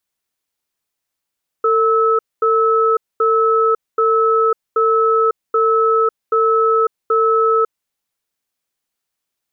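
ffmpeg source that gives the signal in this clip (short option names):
-f lavfi -i "aevalsrc='0.2*(sin(2*PI*450*t)+sin(2*PI*1300*t))*clip(min(mod(t,0.78),0.55-mod(t,0.78))/0.005,0,1)':d=6.1:s=44100"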